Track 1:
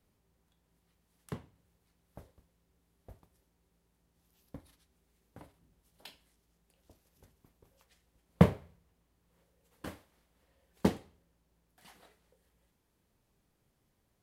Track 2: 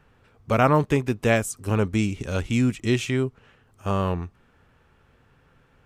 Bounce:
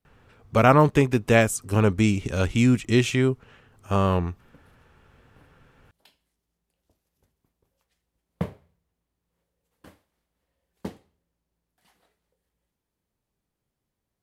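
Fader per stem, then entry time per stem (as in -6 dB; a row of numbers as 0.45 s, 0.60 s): -7.0 dB, +2.5 dB; 0.00 s, 0.05 s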